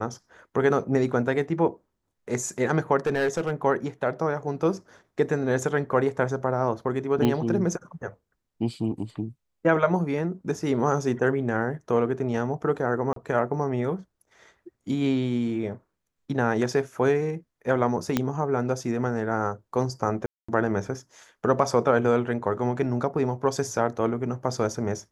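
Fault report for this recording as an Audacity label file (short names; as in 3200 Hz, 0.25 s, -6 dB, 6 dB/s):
3.060000	3.510000	clipped -19 dBFS
7.250000	7.250000	pop -11 dBFS
13.130000	13.160000	gap 33 ms
18.170000	18.170000	pop -8 dBFS
20.260000	20.480000	gap 0.225 s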